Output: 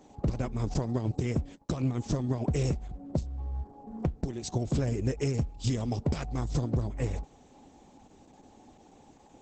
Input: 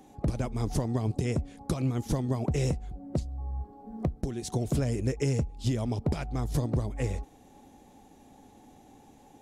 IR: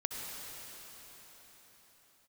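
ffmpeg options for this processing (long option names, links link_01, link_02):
-filter_complex "[0:a]asettb=1/sr,asplit=3[link_01][link_02][link_03];[link_01]atrim=end=0.744[link_04];[link_02]atrim=start=0.74:end=1.99,asetpts=PTS-STARTPTS,afade=type=in:duration=0.004:curve=qsin,afade=type=out:start_time=1.246:duration=0.004:curve=qsin,agate=range=-32dB:threshold=-43dB:ratio=16:detection=peak[link_05];[link_03]atrim=start=1.986[link_06];[link_04][link_05]acrossfade=duration=0.004:curve1=hsin:curve2=qsin[link_07];[link_07][link_06]acrossfade=duration=0.004:curve1=qsin:curve2=hsin,asplit=3[link_08][link_09][link_10];[link_08]afade=type=out:start_time=5.63:duration=0.02[link_11];[link_09]highshelf=frequency=4500:gain=8.5,afade=type=in:start_time=5.63:duration=0.02,afade=type=out:start_time=6.47:duration=0.02[link_12];[link_10]afade=type=in:start_time=6.47:duration=0.02[link_13];[link_11][link_12][link_13]amix=inputs=3:normalize=0" -ar 48000 -c:a libopus -b:a 10k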